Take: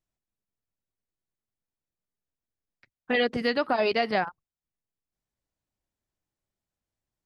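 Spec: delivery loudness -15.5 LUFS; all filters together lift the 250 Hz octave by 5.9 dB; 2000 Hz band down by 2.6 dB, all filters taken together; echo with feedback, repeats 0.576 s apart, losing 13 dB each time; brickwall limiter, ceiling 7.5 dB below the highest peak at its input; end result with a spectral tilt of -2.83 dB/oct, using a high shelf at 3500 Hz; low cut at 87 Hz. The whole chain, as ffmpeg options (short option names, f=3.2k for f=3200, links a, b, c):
-af "highpass=87,equalizer=f=250:t=o:g=6.5,equalizer=f=2k:t=o:g=-5.5,highshelf=f=3.5k:g=8.5,alimiter=limit=-18.5dB:level=0:latency=1,aecho=1:1:576|1152|1728:0.224|0.0493|0.0108,volume=14dB"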